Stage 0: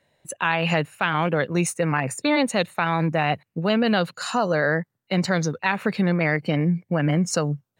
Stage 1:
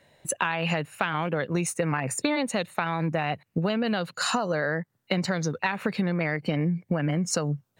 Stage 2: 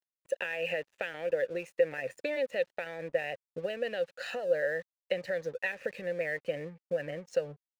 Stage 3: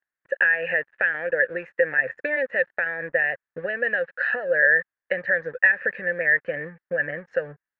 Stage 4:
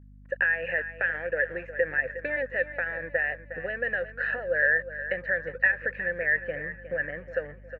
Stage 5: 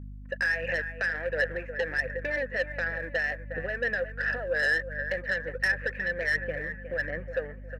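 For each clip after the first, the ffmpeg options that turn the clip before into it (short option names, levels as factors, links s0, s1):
-af "acompressor=threshold=0.0355:ratio=12,volume=2.11"
-filter_complex "[0:a]asubboost=boost=7.5:cutoff=85,asplit=3[s0][s1][s2];[s0]bandpass=f=530:t=q:w=8,volume=1[s3];[s1]bandpass=f=1840:t=q:w=8,volume=0.501[s4];[s2]bandpass=f=2480:t=q:w=8,volume=0.355[s5];[s3][s4][s5]amix=inputs=3:normalize=0,aeval=exprs='sgn(val(0))*max(abs(val(0))-0.001,0)':c=same,volume=1.88"
-af "lowpass=f=1700:t=q:w=8,volume=1.5"
-filter_complex "[0:a]aeval=exprs='val(0)+0.00631*(sin(2*PI*50*n/s)+sin(2*PI*2*50*n/s)/2+sin(2*PI*3*50*n/s)/3+sin(2*PI*4*50*n/s)/4+sin(2*PI*5*50*n/s)/5)':c=same,asplit=2[s0][s1];[s1]aecho=0:1:361|722|1083|1444:0.237|0.0925|0.0361|0.0141[s2];[s0][s2]amix=inputs=2:normalize=0,volume=0.562"
-af "asoftclip=type=tanh:threshold=0.0891,aeval=exprs='val(0)+0.00398*(sin(2*PI*50*n/s)+sin(2*PI*2*50*n/s)/2+sin(2*PI*3*50*n/s)/3+sin(2*PI*4*50*n/s)/4+sin(2*PI*5*50*n/s)/5)':c=same,aphaser=in_gain=1:out_gain=1:delay=4.7:decay=0.31:speed=1.4:type=sinusoidal"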